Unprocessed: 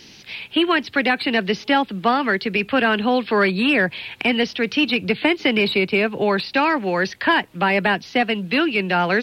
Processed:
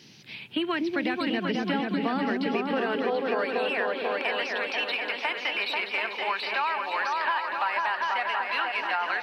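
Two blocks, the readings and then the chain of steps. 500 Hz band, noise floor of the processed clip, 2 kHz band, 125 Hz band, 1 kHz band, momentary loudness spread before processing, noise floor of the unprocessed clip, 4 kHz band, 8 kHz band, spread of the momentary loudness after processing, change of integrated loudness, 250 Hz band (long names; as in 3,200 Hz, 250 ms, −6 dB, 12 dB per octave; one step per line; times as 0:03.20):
−9.0 dB, −41 dBFS, −8.0 dB, −13.0 dB, −5.5 dB, 3 LU, −45 dBFS, −8.5 dB, can't be measured, 2 LU, −8.0 dB, −10.0 dB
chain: high-pass filter sweep 130 Hz → 990 Hz, 0:01.22–0:04.08
echo whose low-pass opens from repeat to repeat 244 ms, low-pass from 400 Hz, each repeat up 2 octaves, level 0 dB
downward compressor, threshold −15 dBFS, peak gain reduction 7 dB
level −8.5 dB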